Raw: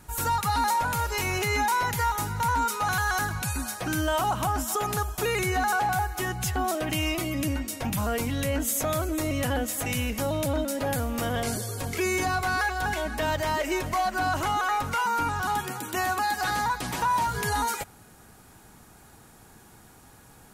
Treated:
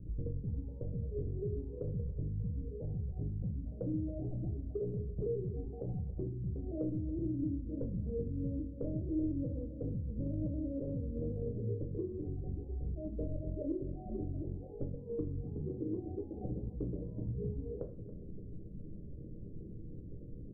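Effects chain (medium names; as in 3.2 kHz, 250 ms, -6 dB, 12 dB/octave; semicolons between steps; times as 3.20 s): resonances exaggerated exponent 2; steep low-pass 550 Hz 72 dB/octave; compression 8:1, threshold -41 dBFS, peak gain reduction 16.5 dB; delay 279 ms -17.5 dB; on a send at -4 dB: reverberation RT60 0.50 s, pre-delay 6 ms; on the sum: trim +4 dB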